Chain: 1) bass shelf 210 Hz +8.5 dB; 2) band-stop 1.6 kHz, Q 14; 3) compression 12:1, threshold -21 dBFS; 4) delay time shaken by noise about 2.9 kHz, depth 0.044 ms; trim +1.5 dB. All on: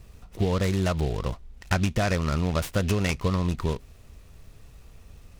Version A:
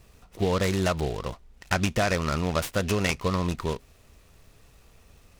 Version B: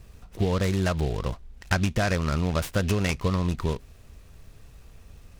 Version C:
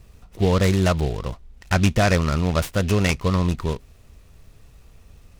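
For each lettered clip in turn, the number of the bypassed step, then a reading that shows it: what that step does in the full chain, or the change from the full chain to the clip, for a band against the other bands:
1, 125 Hz band -6.0 dB; 2, 2 kHz band +1.5 dB; 3, mean gain reduction 2.5 dB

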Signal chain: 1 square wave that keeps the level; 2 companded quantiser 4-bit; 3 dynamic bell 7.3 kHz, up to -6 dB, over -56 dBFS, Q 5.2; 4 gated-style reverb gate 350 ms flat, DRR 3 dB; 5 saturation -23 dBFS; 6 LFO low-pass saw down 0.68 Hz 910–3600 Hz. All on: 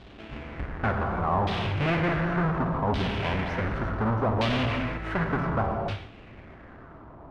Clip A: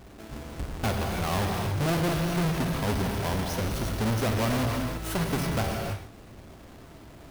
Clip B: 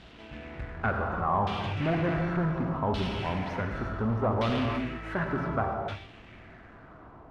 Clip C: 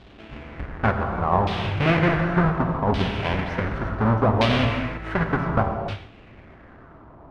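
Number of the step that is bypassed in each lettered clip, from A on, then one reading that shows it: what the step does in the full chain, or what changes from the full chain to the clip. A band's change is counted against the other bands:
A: 6, 1 kHz band -3.5 dB; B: 1, distortion -5 dB; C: 5, distortion -10 dB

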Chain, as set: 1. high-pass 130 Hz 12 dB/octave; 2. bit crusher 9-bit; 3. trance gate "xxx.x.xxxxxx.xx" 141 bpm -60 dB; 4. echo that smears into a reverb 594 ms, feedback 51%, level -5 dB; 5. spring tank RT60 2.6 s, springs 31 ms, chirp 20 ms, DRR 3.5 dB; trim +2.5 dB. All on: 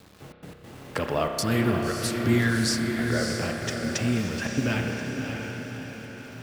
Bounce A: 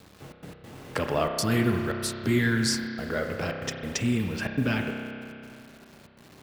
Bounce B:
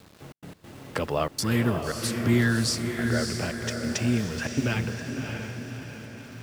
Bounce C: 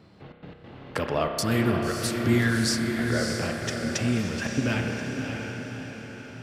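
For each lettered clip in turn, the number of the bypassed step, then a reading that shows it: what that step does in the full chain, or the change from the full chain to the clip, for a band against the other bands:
4, echo-to-direct 0.0 dB to -3.5 dB; 5, echo-to-direct 0.0 dB to -3.5 dB; 2, distortion -27 dB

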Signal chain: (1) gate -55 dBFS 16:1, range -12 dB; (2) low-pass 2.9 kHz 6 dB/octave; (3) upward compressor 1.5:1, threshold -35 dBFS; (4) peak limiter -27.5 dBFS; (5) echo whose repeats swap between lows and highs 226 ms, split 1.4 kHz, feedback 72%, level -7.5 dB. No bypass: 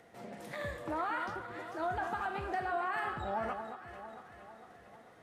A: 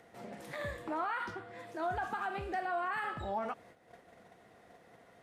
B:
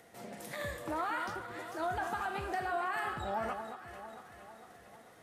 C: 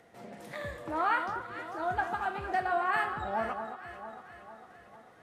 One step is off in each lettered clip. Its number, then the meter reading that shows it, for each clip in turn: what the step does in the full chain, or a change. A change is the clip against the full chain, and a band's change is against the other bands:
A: 5, crest factor change -2.5 dB; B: 2, 4 kHz band +3.5 dB; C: 4, crest factor change +2.5 dB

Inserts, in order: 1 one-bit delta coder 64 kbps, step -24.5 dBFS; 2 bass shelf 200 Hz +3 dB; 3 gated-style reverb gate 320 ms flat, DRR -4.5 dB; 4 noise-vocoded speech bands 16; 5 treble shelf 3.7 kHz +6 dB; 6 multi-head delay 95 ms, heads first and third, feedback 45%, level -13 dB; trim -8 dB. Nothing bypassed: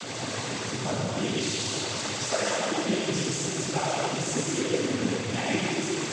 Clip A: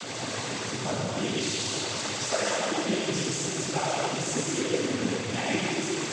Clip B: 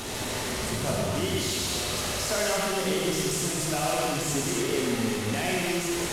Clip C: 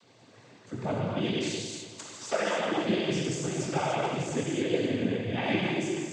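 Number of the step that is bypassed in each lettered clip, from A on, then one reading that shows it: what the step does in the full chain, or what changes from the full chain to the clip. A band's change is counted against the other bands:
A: 2, 125 Hz band -2.0 dB; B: 4, crest factor change -3.0 dB; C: 1, 8 kHz band -8.0 dB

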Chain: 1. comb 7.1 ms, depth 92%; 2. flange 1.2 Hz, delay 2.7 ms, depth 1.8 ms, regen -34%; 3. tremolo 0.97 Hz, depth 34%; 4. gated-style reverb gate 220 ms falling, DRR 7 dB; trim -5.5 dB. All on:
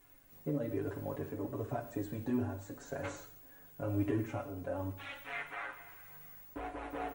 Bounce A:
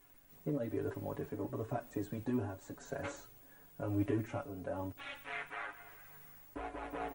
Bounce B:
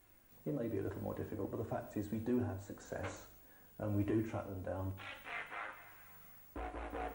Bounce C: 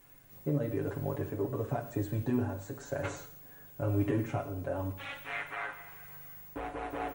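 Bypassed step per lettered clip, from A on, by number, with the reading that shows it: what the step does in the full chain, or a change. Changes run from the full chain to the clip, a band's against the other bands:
4, momentary loudness spread change +2 LU; 1, momentary loudness spread change +3 LU; 2, loudness change +3.5 LU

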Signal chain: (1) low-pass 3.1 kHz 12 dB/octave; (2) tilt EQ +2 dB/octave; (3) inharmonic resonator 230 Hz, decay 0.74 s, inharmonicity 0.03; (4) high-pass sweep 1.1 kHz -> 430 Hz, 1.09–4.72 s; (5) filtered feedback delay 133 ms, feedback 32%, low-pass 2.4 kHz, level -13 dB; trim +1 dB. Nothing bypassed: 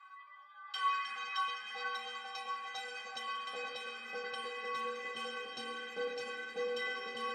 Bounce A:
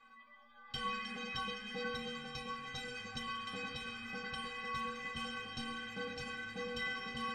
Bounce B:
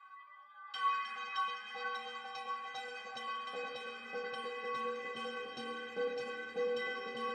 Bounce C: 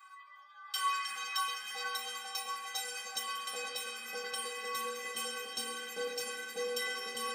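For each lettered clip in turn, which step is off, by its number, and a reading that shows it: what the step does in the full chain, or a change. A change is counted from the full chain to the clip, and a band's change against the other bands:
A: 4, 250 Hz band +11.5 dB; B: 2, 250 Hz band +6.0 dB; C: 1, 8 kHz band +17.0 dB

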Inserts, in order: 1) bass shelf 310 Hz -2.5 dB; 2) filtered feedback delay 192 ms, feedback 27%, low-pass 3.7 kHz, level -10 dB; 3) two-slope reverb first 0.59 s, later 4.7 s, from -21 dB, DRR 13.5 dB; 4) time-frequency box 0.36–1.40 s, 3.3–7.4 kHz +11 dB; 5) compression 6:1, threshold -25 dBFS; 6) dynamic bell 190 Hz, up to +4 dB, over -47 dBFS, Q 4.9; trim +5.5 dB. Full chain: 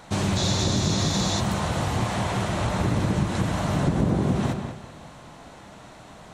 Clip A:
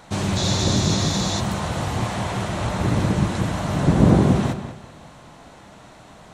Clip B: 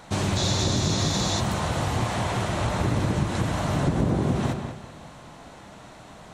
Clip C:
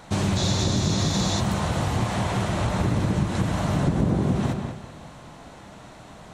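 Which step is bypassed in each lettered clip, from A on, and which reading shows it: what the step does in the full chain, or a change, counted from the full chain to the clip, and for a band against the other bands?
5, mean gain reduction 1.5 dB; 6, 250 Hz band -1.5 dB; 1, 125 Hz band +1.5 dB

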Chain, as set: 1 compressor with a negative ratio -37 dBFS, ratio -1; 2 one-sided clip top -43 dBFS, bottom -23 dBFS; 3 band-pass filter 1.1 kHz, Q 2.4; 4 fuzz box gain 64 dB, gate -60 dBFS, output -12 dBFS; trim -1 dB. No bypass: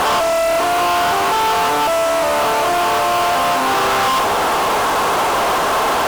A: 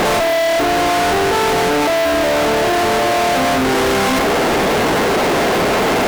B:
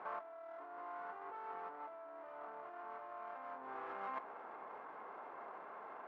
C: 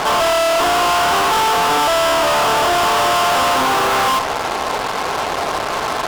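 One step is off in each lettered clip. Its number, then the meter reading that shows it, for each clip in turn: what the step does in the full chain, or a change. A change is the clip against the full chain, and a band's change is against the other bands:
3, 250 Hz band +7.5 dB; 4, distortion -4 dB; 1, momentary loudness spread change +5 LU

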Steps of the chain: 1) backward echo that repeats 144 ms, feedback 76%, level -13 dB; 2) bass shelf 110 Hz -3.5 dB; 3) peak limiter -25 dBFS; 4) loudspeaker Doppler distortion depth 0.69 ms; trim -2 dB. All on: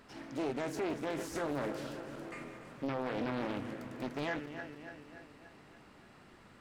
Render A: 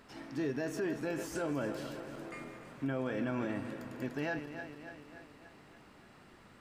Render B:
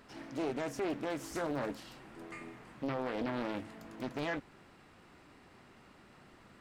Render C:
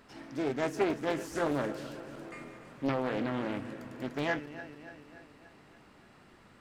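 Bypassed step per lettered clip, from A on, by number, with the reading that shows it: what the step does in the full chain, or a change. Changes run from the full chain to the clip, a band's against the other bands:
4, 1 kHz band -4.5 dB; 1, momentary loudness spread change -9 LU; 3, crest factor change +6.0 dB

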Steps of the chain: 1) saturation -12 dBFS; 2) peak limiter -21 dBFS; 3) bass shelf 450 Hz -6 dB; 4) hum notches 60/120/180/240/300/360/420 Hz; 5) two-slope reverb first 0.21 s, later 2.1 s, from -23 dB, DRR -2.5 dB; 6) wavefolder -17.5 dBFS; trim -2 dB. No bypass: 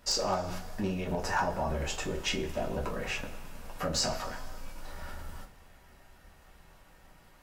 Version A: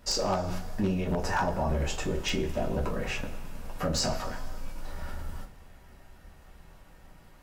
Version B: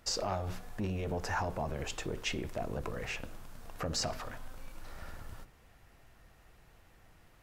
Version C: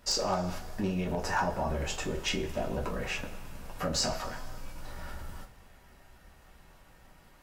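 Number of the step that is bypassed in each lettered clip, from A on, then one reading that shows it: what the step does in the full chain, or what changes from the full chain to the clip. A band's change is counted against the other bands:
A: 3, 125 Hz band +5.0 dB; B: 5, 125 Hz band +3.5 dB; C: 4, 250 Hz band +1.5 dB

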